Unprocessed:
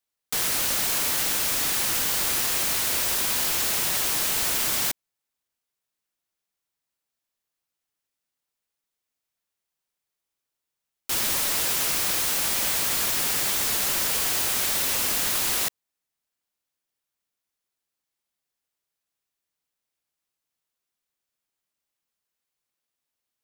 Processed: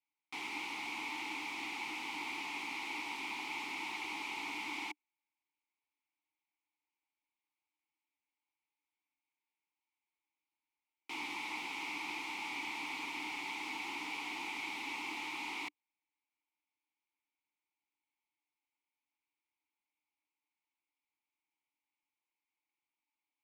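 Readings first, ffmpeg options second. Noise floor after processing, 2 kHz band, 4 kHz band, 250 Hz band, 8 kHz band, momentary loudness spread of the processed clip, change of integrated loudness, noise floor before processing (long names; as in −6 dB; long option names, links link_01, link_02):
below −85 dBFS, −8.0 dB, −17.0 dB, −8.0 dB, −29.5 dB, 2 LU, −18.0 dB, −85 dBFS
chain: -filter_complex "[0:a]asplit=2[link_01][link_02];[link_02]highpass=frequency=720:poles=1,volume=19dB,asoftclip=type=tanh:threshold=-11dB[link_03];[link_01][link_03]amix=inputs=2:normalize=0,lowpass=frequency=3400:poles=1,volume=-6dB,asplit=3[link_04][link_05][link_06];[link_04]bandpass=frequency=300:width_type=q:width=8,volume=0dB[link_07];[link_05]bandpass=frequency=870:width_type=q:width=8,volume=-6dB[link_08];[link_06]bandpass=frequency=2240:width_type=q:width=8,volume=-9dB[link_09];[link_07][link_08][link_09]amix=inputs=3:normalize=0,tiltshelf=frequency=900:gain=-3.5,volume=-1dB"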